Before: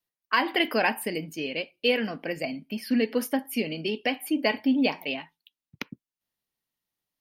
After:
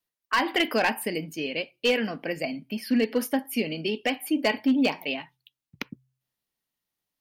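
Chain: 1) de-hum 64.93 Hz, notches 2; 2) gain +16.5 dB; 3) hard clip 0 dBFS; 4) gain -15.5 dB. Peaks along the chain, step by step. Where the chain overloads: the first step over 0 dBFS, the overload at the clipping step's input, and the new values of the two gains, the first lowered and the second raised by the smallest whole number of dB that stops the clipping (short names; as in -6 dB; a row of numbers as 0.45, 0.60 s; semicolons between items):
-8.0, +8.5, 0.0, -15.5 dBFS; step 2, 8.5 dB; step 2 +7.5 dB, step 4 -6.5 dB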